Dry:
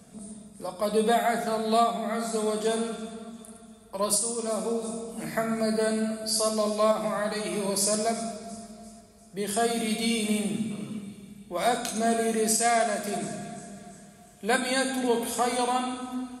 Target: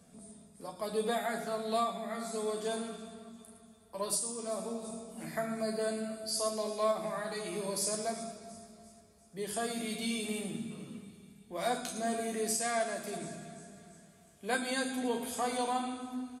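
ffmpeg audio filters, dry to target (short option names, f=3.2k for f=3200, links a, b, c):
-filter_complex "[0:a]asplit=2[a][b];[b]adelay=12,volume=-7dB[c];[a][c]amix=inputs=2:normalize=0,volume=-8.5dB"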